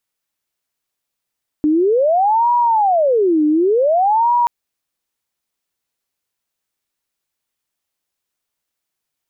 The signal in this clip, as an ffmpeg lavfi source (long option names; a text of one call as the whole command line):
ffmpeg -f lavfi -i "aevalsrc='0.282*sin(2*PI*(632.5*t-331.5/(2*PI*0.55)*sin(2*PI*0.55*t)))':duration=2.83:sample_rate=44100" out.wav